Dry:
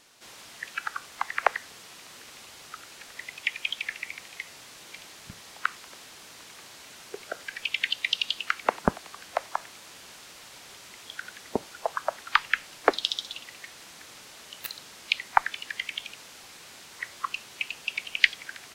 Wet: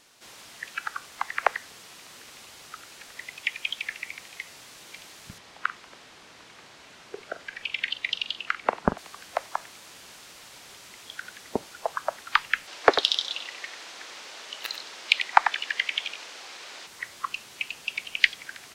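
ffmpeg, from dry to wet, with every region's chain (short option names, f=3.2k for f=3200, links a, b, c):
-filter_complex "[0:a]asettb=1/sr,asplit=3[a][b][c];[a]atrim=end=5.384[d];[b]atrim=start=5.38:end=8.98,asetpts=PTS-STARTPTS,afade=t=in:d=0.004:c=qsin,afade=t=out:st=3.596:d=0.004:c=qsin,aemphasis=mode=reproduction:type=50fm,asplit=2[e][f];[f]adelay=43,volume=-13dB[g];[e][g]amix=inputs=2:normalize=0,atrim=end_sample=158760[h];[c]atrim=start=8.976[i];[d][h]acrossfade=d=0.004:c1=hsin:c2=qsin[j];[j][i]acrossfade=d=0.004:c1=qsin:c2=hsin,asettb=1/sr,asplit=3[k][l][m];[k]atrim=end=12.674[n];[l]atrim=start=12.67:end=16.87,asetpts=PTS-STARTPTS,afade=t=in:d=0.004:c=qsin,afade=t=out:st=4.196:d=0.004:c=qsin,acrossover=split=310 6800:gain=0.126 1 0.178[o][p][q];[o][p][q]amix=inputs=3:normalize=0,acontrast=52,aecho=1:1:94:0.316,atrim=end_sample=185220[r];[m]atrim=start=16.866[s];[n][r]acrossfade=d=0.004:c1=hsin:c2=qsin[t];[t][s]acrossfade=d=0.004:c1=qsin:c2=hsin"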